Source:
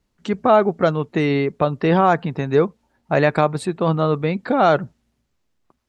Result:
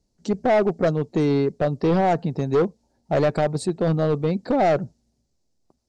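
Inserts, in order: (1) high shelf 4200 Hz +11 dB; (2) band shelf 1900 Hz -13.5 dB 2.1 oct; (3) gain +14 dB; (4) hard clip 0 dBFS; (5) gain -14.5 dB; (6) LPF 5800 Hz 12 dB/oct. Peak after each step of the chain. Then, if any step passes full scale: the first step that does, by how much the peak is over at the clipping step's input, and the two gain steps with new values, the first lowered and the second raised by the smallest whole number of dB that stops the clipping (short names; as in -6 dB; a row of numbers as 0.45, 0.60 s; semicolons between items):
-1.5, -4.5, +9.5, 0.0, -14.5, -14.0 dBFS; step 3, 9.5 dB; step 3 +4 dB, step 5 -4.5 dB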